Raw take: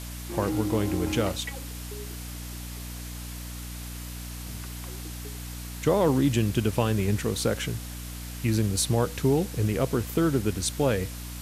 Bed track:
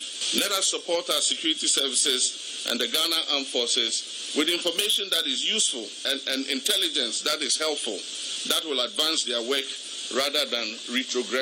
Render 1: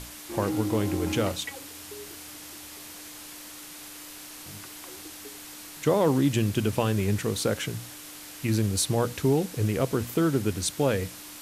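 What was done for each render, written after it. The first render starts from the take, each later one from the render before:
mains-hum notches 60/120/180/240 Hz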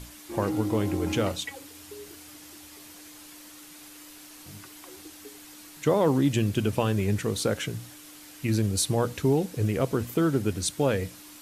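broadband denoise 6 dB, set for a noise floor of −44 dBFS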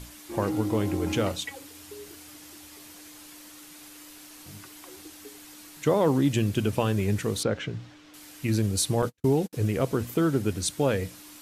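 0:07.43–0:08.14: high-frequency loss of the air 170 metres
0:09.02–0:09.53: noise gate −32 dBFS, range −48 dB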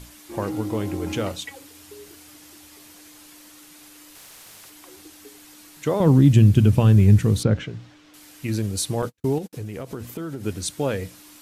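0:04.15–0:04.70: every bin compressed towards the loudest bin 10 to 1
0:06.00–0:07.64: bass and treble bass +15 dB, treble 0 dB
0:09.38–0:10.44: downward compressor, threshold −28 dBFS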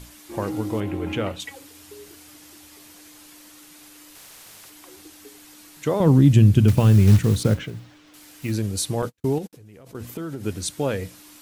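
0:00.80–0:01.40: high shelf with overshoot 3,800 Hz −9.5 dB, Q 1.5
0:06.68–0:08.52: one scale factor per block 5 bits
0:09.47–0:09.95: output level in coarse steps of 23 dB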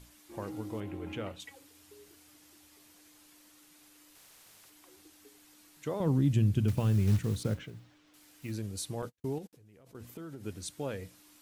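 level −12.5 dB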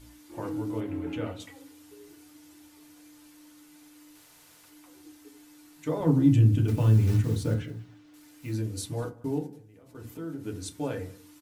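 single-tap delay 189 ms −22 dB
feedback delay network reverb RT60 0.31 s, low-frequency decay 1.3×, high-frequency decay 0.45×, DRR 0 dB

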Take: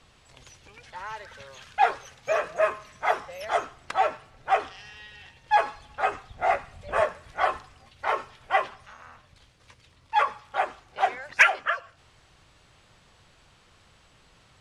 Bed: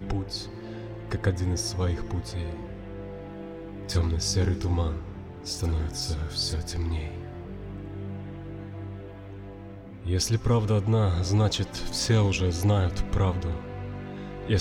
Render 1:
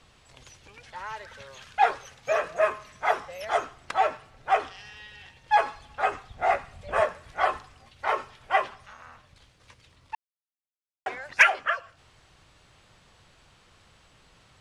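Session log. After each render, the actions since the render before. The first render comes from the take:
0:10.15–0:11.06: silence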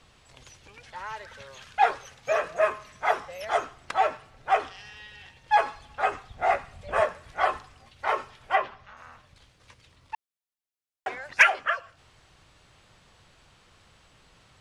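0:08.55–0:08.97: high-frequency loss of the air 150 metres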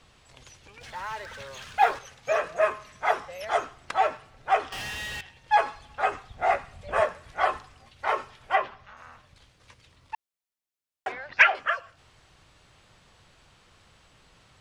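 0:00.81–0:01.99: mu-law and A-law mismatch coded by mu
0:04.72–0:05.21: leveller curve on the samples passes 5
0:11.12–0:11.55: low-pass filter 4,800 Hz 24 dB per octave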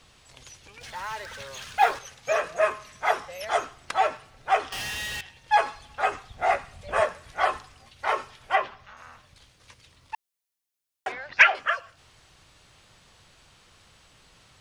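high-shelf EQ 3,700 Hz +7 dB
notch filter 7,600 Hz, Q 25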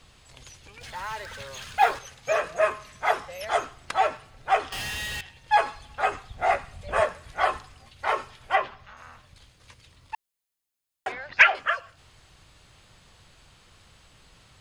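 low-shelf EQ 140 Hz +5.5 dB
notch filter 5,700 Hz, Q 16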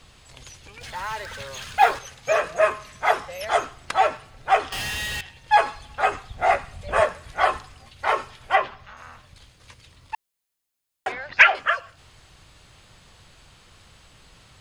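level +3.5 dB
brickwall limiter −2 dBFS, peak gain reduction 1 dB

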